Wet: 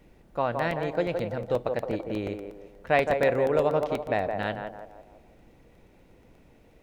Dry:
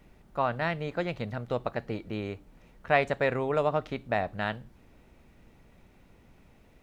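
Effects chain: thirty-one-band EQ 315 Hz +5 dB, 500 Hz +6 dB, 1250 Hz -4 dB; narrowing echo 0.167 s, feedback 49%, band-pass 650 Hz, level -4 dB; crackling interface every 0.12 s, samples 64, repeat, from 0.59

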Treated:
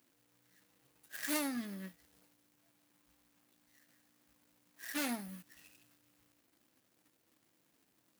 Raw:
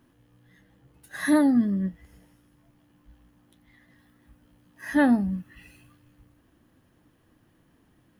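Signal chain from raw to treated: median filter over 41 samples; differentiator; in parallel at -0.5 dB: compressor, threshold -60 dBFS, peak gain reduction 20 dB; on the sum: gain +8.5 dB

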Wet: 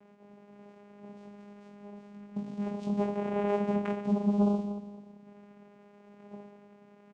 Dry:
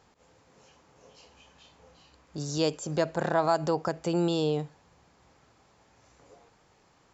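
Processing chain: median filter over 15 samples; 3.99–5.24 spectral gain 590–3700 Hz -7 dB; in parallel at +1 dB: compressor, threshold -37 dBFS, peak gain reduction 15.5 dB; on the sum: limiter -21.5 dBFS, peak gain reduction 9.5 dB; Schroeder reverb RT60 1.5 s, combs from 31 ms, DRR 6.5 dB; frequency shift -170 Hz; 2.37–2.83 hard clip -36.5 dBFS, distortion -10 dB; reverse bouncing-ball echo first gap 20 ms, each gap 1.4×, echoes 5; vocoder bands 4, saw 204 Hz; gain +2 dB

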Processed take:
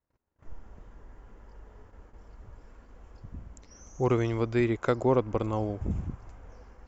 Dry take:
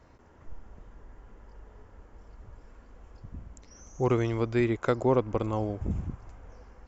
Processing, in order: gate -52 dBFS, range -31 dB

